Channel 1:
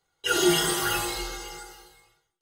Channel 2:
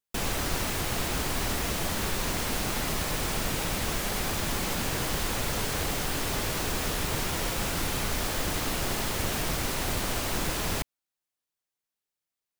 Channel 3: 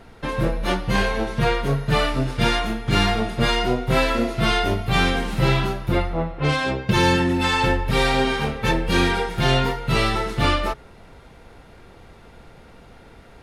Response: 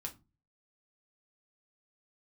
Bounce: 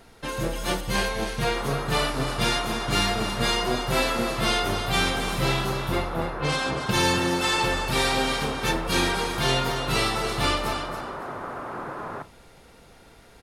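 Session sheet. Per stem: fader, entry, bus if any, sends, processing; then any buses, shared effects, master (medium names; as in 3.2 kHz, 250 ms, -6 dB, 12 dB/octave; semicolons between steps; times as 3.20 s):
-14.5 dB, 0.00 s, muted 0.81–1.38 s, no send, echo send -3.5 dB, peak limiter -21 dBFS, peak gain reduction 10.5 dB
0.0 dB, 1.40 s, send -3.5 dB, no echo send, elliptic band-pass 100–1300 Hz, stop band 60 dB; tilt EQ +3 dB/octave
-5.0 dB, 0.00 s, no send, echo send -8.5 dB, treble shelf 4.4 kHz +4.5 dB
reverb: on, pre-delay 5 ms
echo: feedback delay 279 ms, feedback 23%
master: tone controls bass -3 dB, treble +6 dB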